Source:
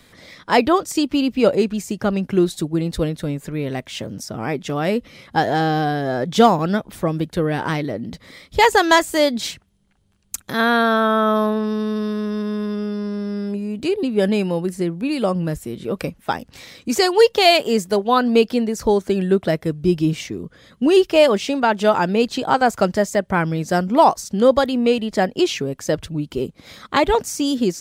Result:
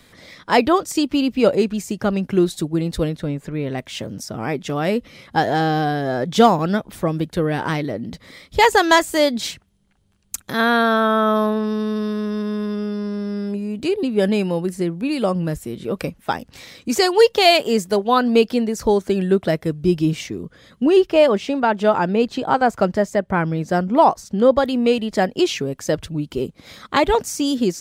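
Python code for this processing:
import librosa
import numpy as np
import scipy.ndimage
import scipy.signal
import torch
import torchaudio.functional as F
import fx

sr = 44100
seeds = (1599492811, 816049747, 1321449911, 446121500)

y = fx.lowpass(x, sr, hz=3600.0, slope=6, at=(3.17, 3.78))
y = fx.high_shelf(y, sr, hz=3300.0, db=-9.5, at=(20.83, 24.64))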